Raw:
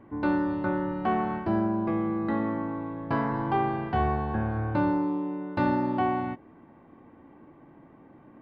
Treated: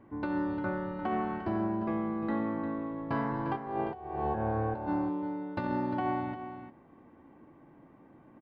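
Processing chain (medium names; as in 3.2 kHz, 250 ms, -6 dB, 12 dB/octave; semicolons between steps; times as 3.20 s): 3.57–4.87 s: high-order bell 590 Hz +9.5 dB; compressor with a negative ratio -25 dBFS, ratio -0.5; delay 350 ms -10 dB; trim -6 dB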